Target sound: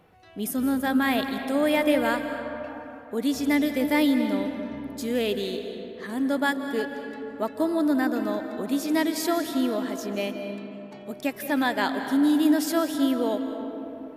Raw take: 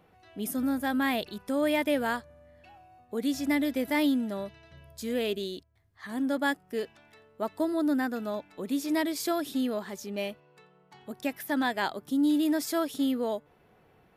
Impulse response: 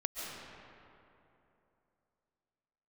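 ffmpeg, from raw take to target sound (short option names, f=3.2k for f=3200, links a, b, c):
-filter_complex "[0:a]asplit=2[a][b];[1:a]atrim=start_sample=2205,asetrate=37485,aresample=44100[c];[b][c]afir=irnorm=-1:irlink=0,volume=-5dB[d];[a][d]amix=inputs=2:normalize=0"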